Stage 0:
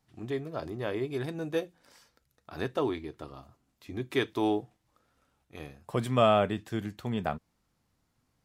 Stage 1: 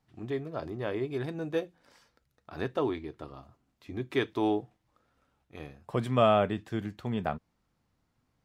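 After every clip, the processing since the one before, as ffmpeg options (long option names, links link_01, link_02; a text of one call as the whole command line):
ffmpeg -i in.wav -af "highshelf=frequency=5800:gain=-10" out.wav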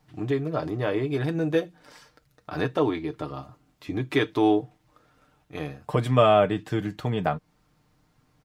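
ffmpeg -i in.wav -filter_complex "[0:a]asplit=2[link_01][link_02];[link_02]acompressor=threshold=-37dB:ratio=6,volume=2dB[link_03];[link_01][link_03]amix=inputs=2:normalize=0,aecho=1:1:6.6:0.53,volume=2.5dB" out.wav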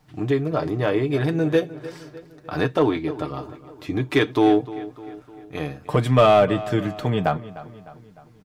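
ffmpeg -i in.wav -filter_complex "[0:a]asplit=2[link_01][link_02];[link_02]aeval=exprs='0.168*(abs(mod(val(0)/0.168+3,4)-2)-1)':channel_layout=same,volume=-9.5dB[link_03];[link_01][link_03]amix=inputs=2:normalize=0,asplit=2[link_04][link_05];[link_05]adelay=303,lowpass=frequency=3900:poles=1,volume=-16dB,asplit=2[link_06][link_07];[link_07]adelay=303,lowpass=frequency=3900:poles=1,volume=0.53,asplit=2[link_08][link_09];[link_09]adelay=303,lowpass=frequency=3900:poles=1,volume=0.53,asplit=2[link_10][link_11];[link_11]adelay=303,lowpass=frequency=3900:poles=1,volume=0.53,asplit=2[link_12][link_13];[link_13]adelay=303,lowpass=frequency=3900:poles=1,volume=0.53[link_14];[link_04][link_06][link_08][link_10][link_12][link_14]amix=inputs=6:normalize=0,volume=2dB" out.wav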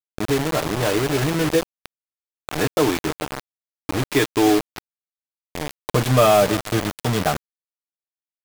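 ffmpeg -i in.wav -af "acrusher=bits=3:mix=0:aa=0.000001" out.wav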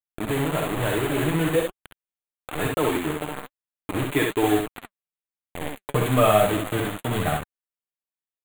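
ffmpeg -i in.wav -filter_complex "[0:a]flanger=delay=0.5:depth=6.6:regen=57:speed=1.1:shape=sinusoidal,asuperstop=centerf=5300:order=4:qfactor=1.3,asplit=2[link_01][link_02];[link_02]aecho=0:1:55|66:0.316|0.668[link_03];[link_01][link_03]amix=inputs=2:normalize=0" out.wav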